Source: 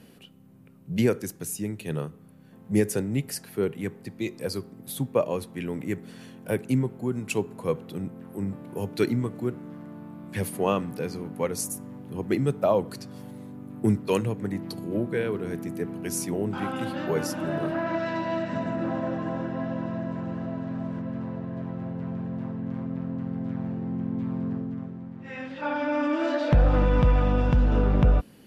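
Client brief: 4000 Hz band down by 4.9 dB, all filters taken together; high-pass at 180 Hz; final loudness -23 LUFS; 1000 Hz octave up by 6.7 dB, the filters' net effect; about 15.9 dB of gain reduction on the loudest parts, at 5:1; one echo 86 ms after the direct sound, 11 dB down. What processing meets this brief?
HPF 180 Hz; bell 1000 Hz +8.5 dB; bell 4000 Hz -7.5 dB; compressor 5:1, threshold -34 dBFS; echo 86 ms -11 dB; gain +14.5 dB

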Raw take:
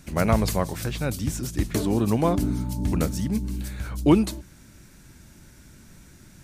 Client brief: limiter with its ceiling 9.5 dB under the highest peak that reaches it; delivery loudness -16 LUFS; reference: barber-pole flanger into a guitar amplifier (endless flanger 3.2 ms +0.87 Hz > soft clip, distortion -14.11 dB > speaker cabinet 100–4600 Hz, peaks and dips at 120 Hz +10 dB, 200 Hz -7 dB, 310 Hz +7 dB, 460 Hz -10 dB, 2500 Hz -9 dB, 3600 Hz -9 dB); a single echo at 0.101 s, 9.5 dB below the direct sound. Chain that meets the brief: limiter -16.5 dBFS; echo 0.101 s -9.5 dB; endless flanger 3.2 ms +0.87 Hz; soft clip -25 dBFS; speaker cabinet 100–4600 Hz, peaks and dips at 120 Hz +10 dB, 200 Hz -7 dB, 310 Hz +7 dB, 460 Hz -10 dB, 2500 Hz -9 dB, 3600 Hz -9 dB; gain +16.5 dB

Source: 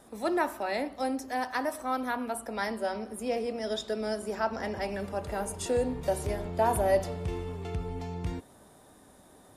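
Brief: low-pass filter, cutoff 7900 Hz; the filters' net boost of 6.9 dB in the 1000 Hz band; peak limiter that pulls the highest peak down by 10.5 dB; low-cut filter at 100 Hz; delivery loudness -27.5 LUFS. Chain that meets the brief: HPF 100 Hz; LPF 7900 Hz; bell 1000 Hz +9 dB; gain +3.5 dB; limiter -15.5 dBFS

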